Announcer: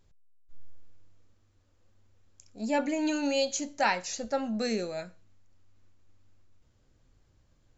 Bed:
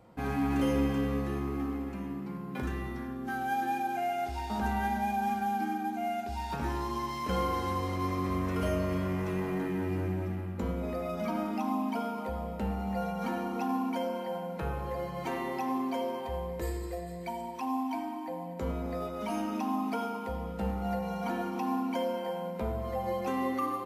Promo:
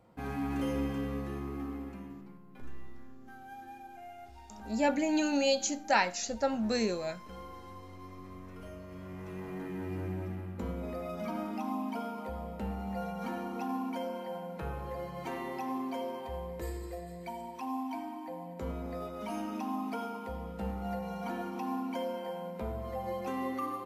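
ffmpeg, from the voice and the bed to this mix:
-filter_complex "[0:a]adelay=2100,volume=1[s0];[1:a]volume=2.37,afade=t=out:st=1.85:d=0.56:silence=0.266073,afade=t=in:st=8.87:d=1.29:silence=0.237137[s1];[s0][s1]amix=inputs=2:normalize=0"

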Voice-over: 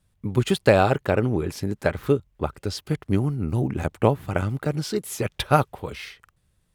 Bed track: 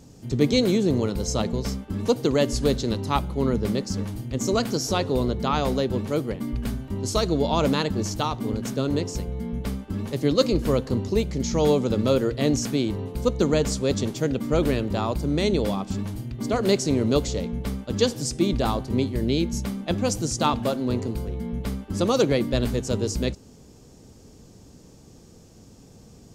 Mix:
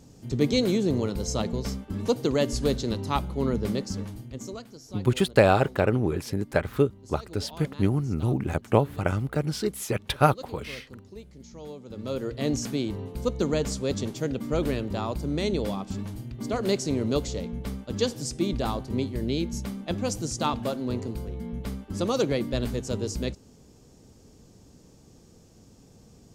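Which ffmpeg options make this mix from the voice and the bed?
-filter_complex "[0:a]adelay=4700,volume=0.841[s0];[1:a]volume=4.73,afade=t=out:st=3.81:d=0.84:silence=0.125893,afade=t=in:st=11.85:d=0.66:silence=0.149624[s1];[s0][s1]amix=inputs=2:normalize=0"

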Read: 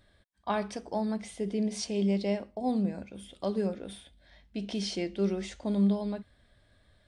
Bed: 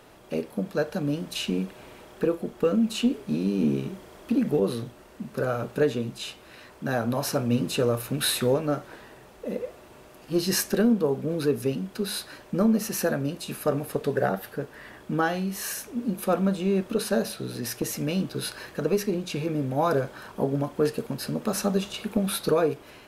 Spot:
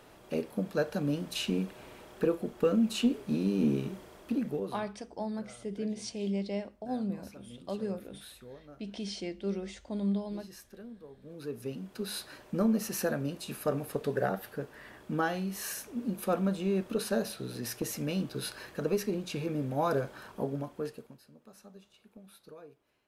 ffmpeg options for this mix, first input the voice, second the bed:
-filter_complex "[0:a]adelay=4250,volume=0.562[s0];[1:a]volume=7.08,afade=t=out:st=3.98:d=0.96:silence=0.0749894,afade=t=in:st=11.17:d=1.12:silence=0.0944061,afade=t=out:st=20.2:d=1.03:silence=0.0749894[s1];[s0][s1]amix=inputs=2:normalize=0"

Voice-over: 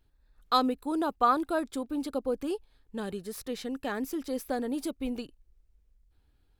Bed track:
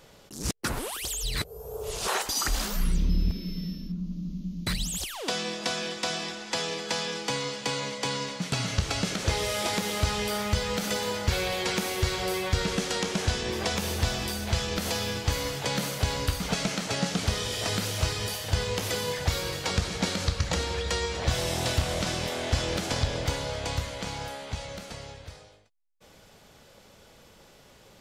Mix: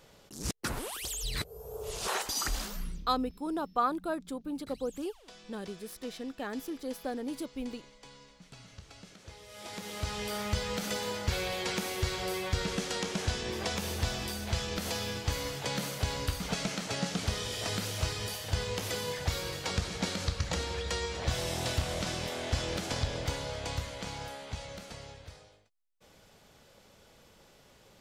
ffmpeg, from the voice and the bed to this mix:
-filter_complex "[0:a]adelay=2550,volume=0.596[s0];[1:a]volume=4.73,afade=t=out:st=2.44:d=0.63:silence=0.11885,afade=t=in:st=9.47:d=0.99:silence=0.125893[s1];[s0][s1]amix=inputs=2:normalize=0"

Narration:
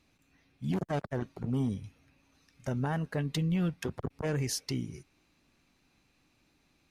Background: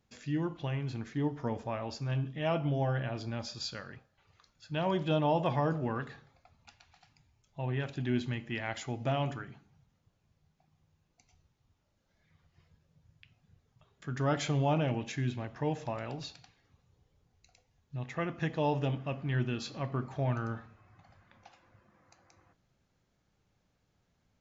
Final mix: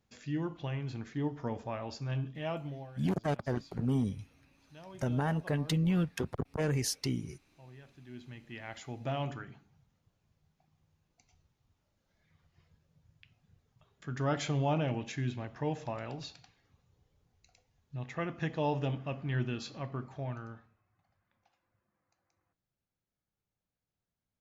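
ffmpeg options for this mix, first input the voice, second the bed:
-filter_complex "[0:a]adelay=2350,volume=1.06[s0];[1:a]volume=6.31,afade=t=out:st=2.25:d=0.65:silence=0.133352,afade=t=in:st=8.07:d=1.41:silence=0.125893,afade=t=out:st=19.46:d=1.4:silence=0.177828[s1];[s0][s1]amix=inputs=2:normalize=0"

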